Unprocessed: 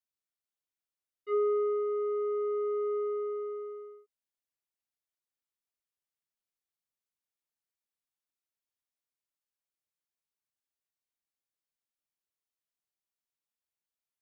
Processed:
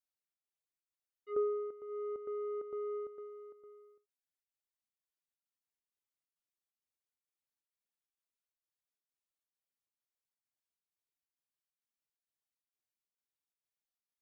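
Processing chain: reverb removal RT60 1.2 s; square tremolo 2.2 Hz, depth 60%, duty 75%; trim -2.5 dB

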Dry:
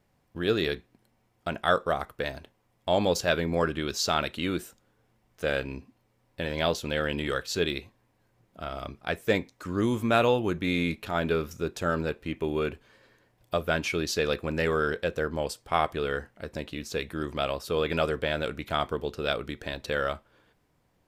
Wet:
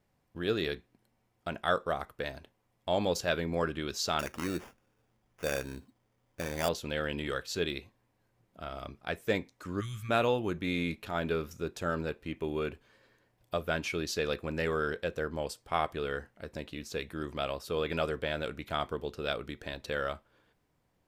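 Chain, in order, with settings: 4.19–6.69 s: sample-rate reducer 4.1 kHz, jitter 0%; 9.80–10.09 s: time-frequency box 210–1100 Hz -26 dB; trim -5 dB

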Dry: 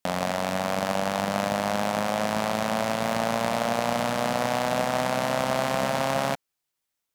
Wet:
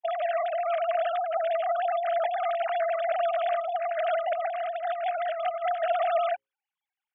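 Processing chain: formants replaced by sine waves; hum notches 60/120/180/240/300/360/420/480/540 Hz; 3.55–5.83 s: compressor with a negative ratio -28 dBFS, ratio -0.5

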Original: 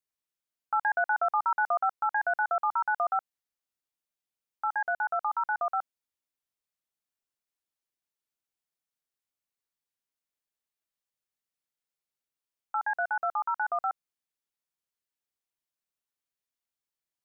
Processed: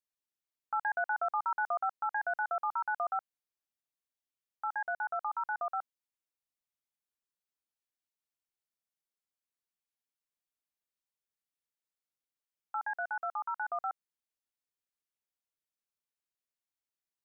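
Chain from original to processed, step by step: 12.87–13.68 s: bass shelf 270 Hz -11.5 dB; trim -5.5 dB

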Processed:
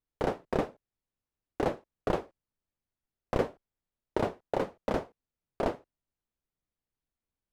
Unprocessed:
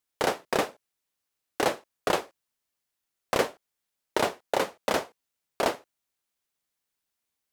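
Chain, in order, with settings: tilt EQ -4 dB/octave; trim -7 dB

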